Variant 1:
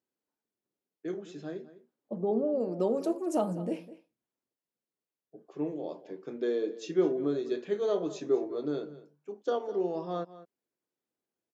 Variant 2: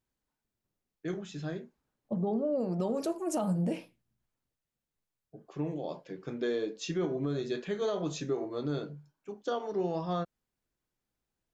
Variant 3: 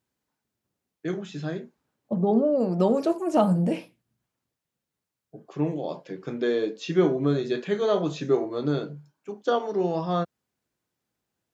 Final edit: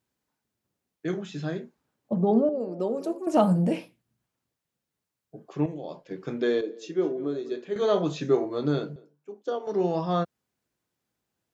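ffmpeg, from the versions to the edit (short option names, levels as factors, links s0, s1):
-filter_complex "[0:a]asplit=3[s0][s1][s2];[2:a]asplit=5[s3][s4][s5][s6][s7];[s3]atrim=end=2.492[s8];[s0]atrim=start=2.488:end=3.272[s9];[s4]atrim=start=3.268:end=5.662[s10];[1:a]atrim=start=5.658:end=6.112[s11];[s5]atrim=start=6.108:end=6.612[s12];[s1]atrim=start=6.608:end=7.762[s13];[s6]atrim=start=7.758:end=8.962[s14];[s2]atrim=start=8.958:end=9.672[s15];[s7]atrim=start=9.668[s16];[s8][s9]acrossfade=d=0.004:c1=hsin:c2=hsin[s17];[s17][s10]acrossfade=d=0.004:c1=hsin:c2=hsin[s18];[s18][s11]acrossfade=d=0.004:c1=hsin:c2=hsin[s19];[s19][s12]acrossfade=d=0.004:c1=hsin:c2=hsin[s20];[s20][s13]acrossfade=d=0.004:c1=hsin:c2=hsin[s21];[s21][s14]acrossfade=d=0.004:c1=hsin:c2=hsin[s22];[s22][s15]acrossfade=d=0.004:c1=hsin:c2=hsin[s23];[s23][s16]acrossfade=d=0.004:c1=hsin:c2=hsin"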